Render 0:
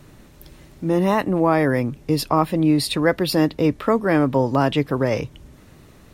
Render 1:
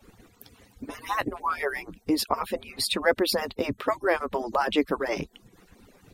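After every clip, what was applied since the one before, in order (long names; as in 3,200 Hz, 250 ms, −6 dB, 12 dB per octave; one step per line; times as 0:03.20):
harmonic-percussive split with one part muted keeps percussive
level −1.5 dB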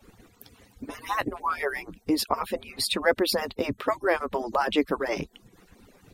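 no processing that can be heard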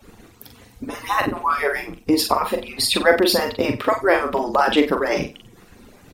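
double-tracking delay 41 ms −6 dB
on a send: flutter between parallel walls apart 8.5 metres, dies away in 0.27 s
on the sum: level +6.5 dB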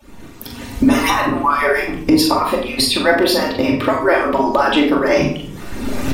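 camcorder AGC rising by 22 dB per second
convolution reverb RT60 0.65 s, pre-delay 3 ms, DRR 0 dB
level −1 dB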